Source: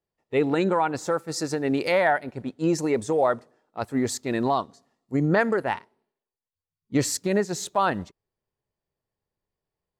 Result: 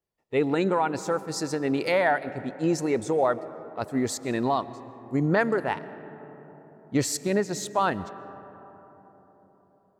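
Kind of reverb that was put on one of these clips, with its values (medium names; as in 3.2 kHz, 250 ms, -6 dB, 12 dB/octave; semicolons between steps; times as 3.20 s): algorithmic reverb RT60 4.4 s, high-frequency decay 0.3×, pre-delay 90 ms, DRR 15.5 dB; trim -1.5 dB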